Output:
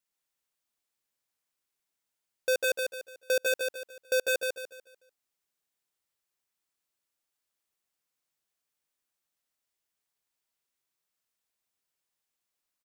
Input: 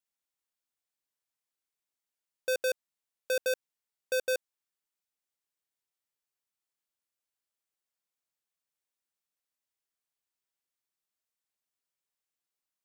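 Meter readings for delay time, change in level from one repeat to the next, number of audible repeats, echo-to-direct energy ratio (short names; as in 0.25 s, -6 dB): 0.147 s, -9.0 dB, 4, -3.5 dB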